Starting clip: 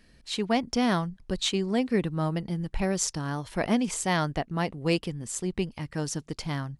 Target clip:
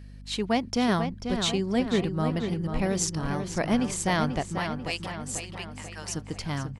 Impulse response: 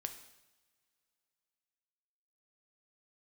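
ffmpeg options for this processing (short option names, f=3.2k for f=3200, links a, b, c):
-filter_complex "[0:a]asettb=1/sr,asplit=3[a][b][c];[a]atrim=end=4.584[d];[b]atrim=start=4.58:end=6.1,asetpts=PTS-STARTPTS,afade=t=in:d=0.004:c=qsin,afade=t=out:st=1.516:d=0.004:c=qsin,highpass=1k[e];[c]atrim=start=6.096[f];[d][e]acrossfade=d=0.004:c1=hsin:c2=qsin[g];[g][f]acrossfade=d=0.004:c1=qsin:c2=hsin,aeval=exprs='val(0)+0.00708*(sin(2*PI*50*n/s)+sin(2*PI*2*50*n/s)/2+sin(2*PI*3*50*n/s)/3+sin(2*PI*4*50*n/s)/4+sin(2*PI*5*50*n/s)/5)':c=same,asplit=2[h][i];[i]adelay=490,lowpass=f=4k:p=1,volume=-7dB,asplit=2[j][k];[k]adelay=490,lowpass=f=4k:p=1,volume=0.54,asplit=2[l][m];[m]adelay=490,lowpass=f=4k:p=1,volume=0.54,asplit=2[n][o];[o]adelay=490,lowpass=f=4k:p=1,volume=0.54,asplit=2[p][q];[q]adelay=490,lowpass=f=4k:p=1,volume=0.54,asplit=2[r][s];[s]adelay=490,lowpass=f=4k:p=1,volume=0.54,asplit=2[t][u];[u]adelay=490,lowpass=f=4k:p=1,volume=0.54[v];[h][j][l][n][p][r][t][v]amix=inputs=8:normalize=0"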